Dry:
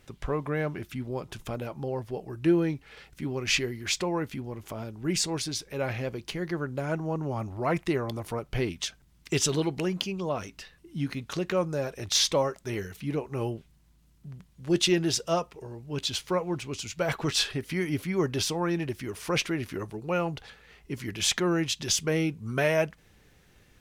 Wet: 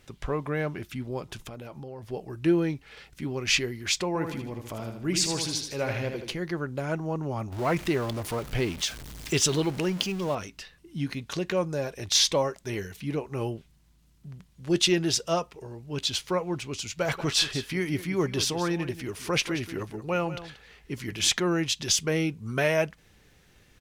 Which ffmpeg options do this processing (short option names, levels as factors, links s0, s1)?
-filter_complex "[0:a]asettb=1/sr,asplit=3[s0][s1][s2];[s0]atrim=end=1.444[s3];[s1]atrim=start=1.44:end=2.03,asetpts=PTS-STARTPTS,afade=t=in:d=0.004:c=qsin,afade=t=out:st=0.586:d=0.004:c=qsin,acompressor=threshold=0.0141:ratio=6:attack=3.2:release=140:knee=1:detection=peak[s4];[s2]atrim=start=2.026[s5];[s3][s4]acrossfade=d=0.004:c1=hsin:c2=qsin[s6];[s6][s5]acrossfade=d=0.004:c1=qsin:c2=hsin,asettb=1/sr,asplit=3[s7][s8][s9];[s7]atrim=end=4.074[s10];[s8]atrim=start=4.07:end=6.36,asetpts=PTS-STARTPTS,afade=t=in:d=0.004:c=qsin,afade=t=out:st=2.286:d=0.004:c=qsin,aecho=1:1:78|156|234|312|390:0.473|0.203|0.0875|0.0376|0.0162,atrim=end_sample=100989[s11];[s9]atrim=start=6.356[s12];[s10][s11]acrossfade=d=0.004:c1=hsin:c2=qsin[s13];[s13][s12]acrossfade=d=0.004:c1=qsin:c2=hsin,asettb=1/sr,asplit=3[s14][s15][s16];[s14]atrim=end=7.524[s17];[s15]atrim=start=7.52:end=10.35,asetpts=PTS-STARTPTS,afade=t=in:d=0.004:c=qsin,afade=t=out:st=2.826:d=0.004:c=qsin,aeval=exprs='val(0)+0.5*0.015*sgn(val(0))':c=same[s18];[s16]atrim=start=10.346[s19];[s17][s18]acrossfade=d=0.004:c1=hsin:c2=qsin[s20];[s20][s19]acrossfade=d=0.004:c1=qsin:c2=hsin,asettb=1/sr,asplit=3[s21][s22][s23];[s21]atrim=end=11.004[s24];[s22]atrim=start=11:end=13.06,asetpts=PTS-STARTPTS,afade=t=in:d=0.004:c=qsin,afade=t=out:st=2.056:d=0.004:c=qsin,bandreject=f=1300:w=12[s25];[s23]atrim=start=13.056[s26];[s24][s25]acrossfade=d=0.004:c1=hsin:c2=qsin[s27];[s27][s26]acrossfade=d=0.004:c1=qsin:c2=hsin,asplit=3[s28][s29][s30];[s28]afade=t=out:st=17:d=0.02[s31];[s29]aecho=1:1:182:0.211,afade=t=in:st=17:d=0.02,afade=t=out:st=21.31:d=0.02[s32];[s30]afade=t=in:st=21.31:d=0.02[s33];[s31][s32][s33]amix=inputs=3:normalize=0,equalizer=f=4500:w=0.55:g=2.5"